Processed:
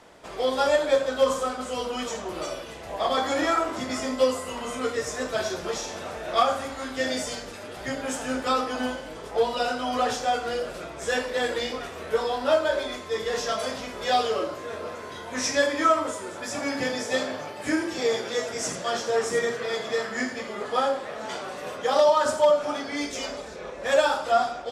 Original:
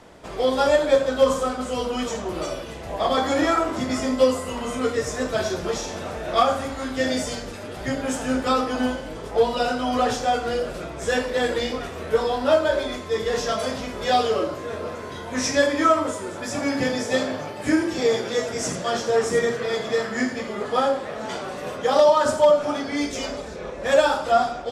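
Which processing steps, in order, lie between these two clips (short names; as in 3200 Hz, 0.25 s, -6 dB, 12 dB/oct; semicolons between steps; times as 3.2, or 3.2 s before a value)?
low shelf 320 Hz -8.5 dB; gain -1.5 dB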